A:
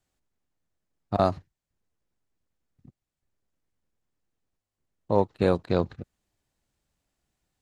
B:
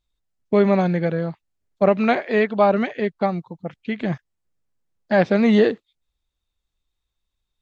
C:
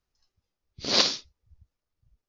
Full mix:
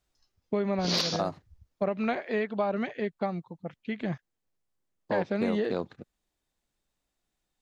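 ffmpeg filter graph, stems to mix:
-filter_complex "[0:a]highpass=180,volume=0.708[s0];[1:a]volume=0.422[s1];[2:a]asoftclip=type=tanh:threshold=0.335,volume=1.12[s2];[s0][s1][s2]amix=inputs=3:normalize=0,acompressor=threshold=0.0631:ratio=6"

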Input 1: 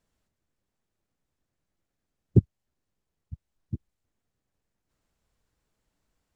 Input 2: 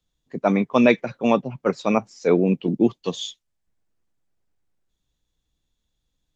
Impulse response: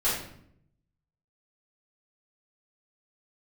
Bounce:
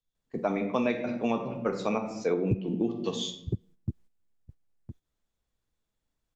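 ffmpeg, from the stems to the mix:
-filter_complex "[0:a]adelay=150,volume=1.26,asplit=2[s0][s1];[s1]volume=0.251[s2];[1:a]volume=0.531,asplit=2[s3][s4];[s4]volume=0.2[s5];[2:a]atrim=start_sample=2205[s6];[s5][s6]afir=irnorm=-1:irlink=0[s7];[s2]aecho=0:1:1010:1[s8];[s0][s3][s7][s8]amix=inputs=4:normalize=0,agate=range=0.316:threshold=0.00398:ratio=16:detection=peak,acompressor=threshold=0.0562:ratio=4"

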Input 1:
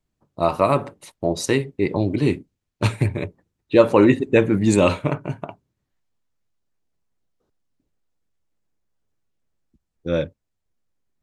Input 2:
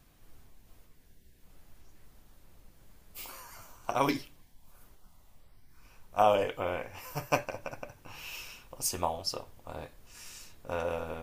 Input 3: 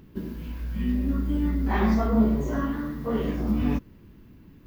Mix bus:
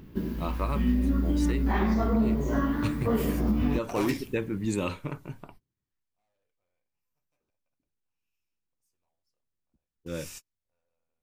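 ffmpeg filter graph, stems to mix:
-filter_complex "[0:a]equalizer=f=650:t=o:w=0.48:g=-9,volume=0.266,asplit=2[s0][s1];[1:a]equalizer=f=2400:t=o:w=0.22:g=5,volume=29.9,asoftclip=hard,volume=0.0335,adynamicequalizer=threshold=0.00178:dfrequency=5500:dqfactor=0.7:tfrequency=5500:tqfactor=0.7:attack=5:release=100:ratio=0.375:range=3.5:mode=boostabove:tftype=highshelf,volume=1[s2];[2:a]volume=1.33[s3];[s1]apad=whole_len=495085[s4];[s2][s4]sidechaingate=range=0.00282:threshold=0.002:ratio=16:detection=peak[s5];[s0][s5][s3]amix=inputs=3:normalize=0,alimiter=limit=0.158:level=0:latency=1:release=311"

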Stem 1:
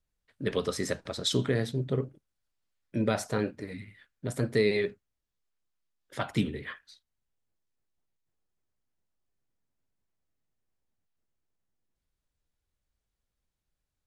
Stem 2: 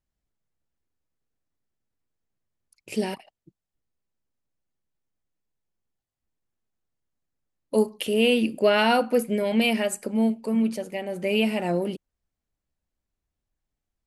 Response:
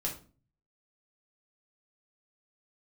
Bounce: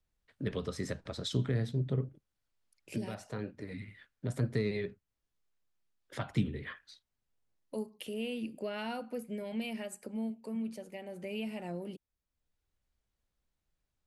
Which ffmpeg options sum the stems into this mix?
-filter_complex "[0:a]highshelf=f=7900:g=-7,aeval=exprs='0.224*(cos(1*acos(clip(val(0)/0.224,-1,1)))-cos(1*PI/2))+0.0112*(cos(3*acos(clip(val(0)/0.224,-1,1)))-cos(3*PI/2))':c=same,volume=1.26[s0];[1:a]volume=0.299,asplit=2[s1][s2];[s2]apad=whole_len=620483[s3];[s0][s3]sidechaincompress=threshold=0.00562:ratio=8:attack=43:release=843[s4];[s4][s1]amix=inputs=2:normalize=0,acrossover=split=190[s5][s6];[s6]acompressor=threshold=0.00708:ratio=2[s7];[s5][s7]amix=inputs=2:normalize=0"

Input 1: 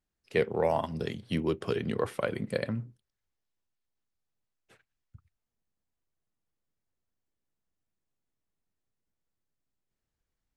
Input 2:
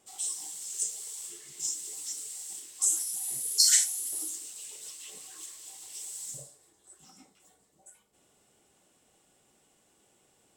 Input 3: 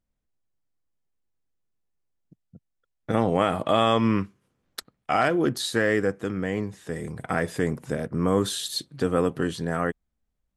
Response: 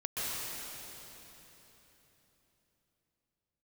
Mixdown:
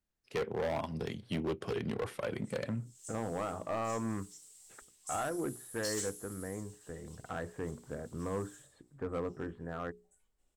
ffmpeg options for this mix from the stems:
-filter_complex "[0:a]volume=0.708,asplit=2[s0][s1];[1:a]adelay=2250,volume=0.141[s2];[2:a]lowpass=f=1700:w=0.5412,lowpass=f=1700:w=1.3066,bandreject=f=60:t=h:w=6,bandreject=f=120:t=h:w=6,bandreject=f=180:t=h:w=6,bandreject=f=240:t=h:w=6,bandreject=f=300:t=h:w=6,bandreject=f=360:t=h:w=6,bandreject=f=420:t=h:w=6,asubboost=boost=4.5:cutoff=65,volume=0.266[s3];[s1]apad=whole_len=565160[s4];[s2][s4]sidechaincompress=threshold=0.00398:ratio=8:attack=16:release=263[s5];[s0][s5][s3]amix=inputs=3:normalize=0,asoftclip=type=hard:threshold=0.0335"

